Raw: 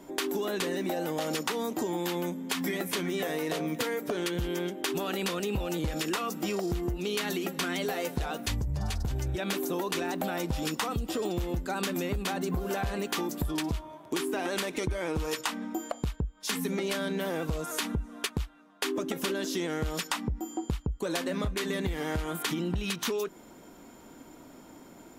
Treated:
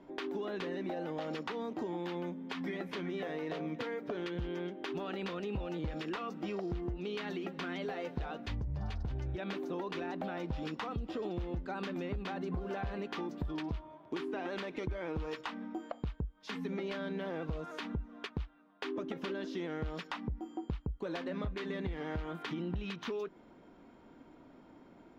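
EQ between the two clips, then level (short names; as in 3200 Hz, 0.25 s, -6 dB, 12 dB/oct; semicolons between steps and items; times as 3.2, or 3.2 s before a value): air absorption 250 m; -6.0 dB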